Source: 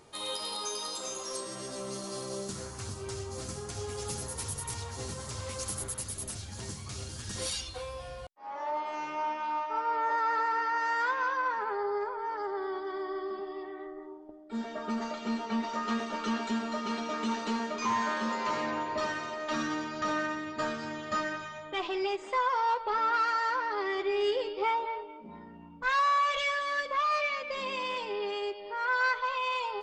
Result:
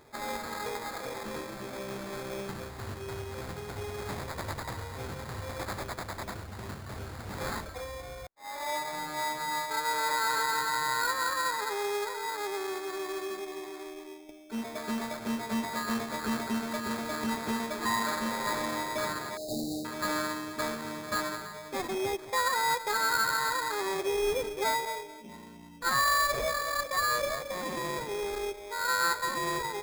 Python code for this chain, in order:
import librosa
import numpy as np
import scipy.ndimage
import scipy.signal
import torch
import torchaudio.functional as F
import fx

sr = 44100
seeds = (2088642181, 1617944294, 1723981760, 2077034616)

y = fx.sample_hold(x, sr, seeds[0], rate_hz=2900.0, jitter_pct=0)
y = fx.brickwall_bandstop(y, sr, low_hz=820.0, high_hz=3600.0, at=(19.37, 19.85))